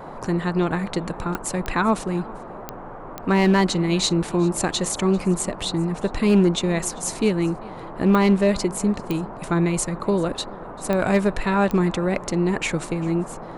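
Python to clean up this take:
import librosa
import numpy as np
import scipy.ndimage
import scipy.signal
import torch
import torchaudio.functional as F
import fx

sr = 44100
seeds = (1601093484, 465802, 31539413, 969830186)

y = fx.fix_declip(x, sr, threshold_db=-10.5)
y = fx.fix_declick_ar(y, sr, threshold=10.0)
y = fx.noise_reduce(y, sr, print_start_s=2.73, print_end_s=3.23, reduce_db=30.0)
y = fx.fix_echo_inverse(y, sr, delay_ms=394, level_db=-22.5)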